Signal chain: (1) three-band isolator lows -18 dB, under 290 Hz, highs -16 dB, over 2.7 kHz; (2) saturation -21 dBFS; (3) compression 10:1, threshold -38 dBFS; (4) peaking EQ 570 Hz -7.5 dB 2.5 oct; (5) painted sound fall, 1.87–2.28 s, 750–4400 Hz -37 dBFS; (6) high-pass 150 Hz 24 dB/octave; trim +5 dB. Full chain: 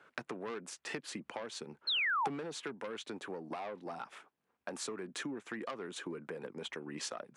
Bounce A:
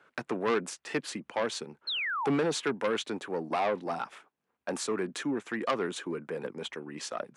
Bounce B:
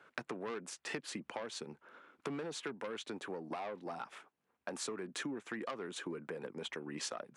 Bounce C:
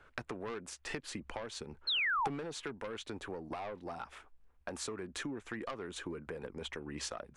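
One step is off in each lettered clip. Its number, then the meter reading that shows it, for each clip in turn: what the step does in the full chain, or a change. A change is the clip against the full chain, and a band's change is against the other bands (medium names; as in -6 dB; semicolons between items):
3, mean gain reduction 7.5 dB; 5, 4 kHz band -6.5 dB; 6, 125 Hz band +4.0 dB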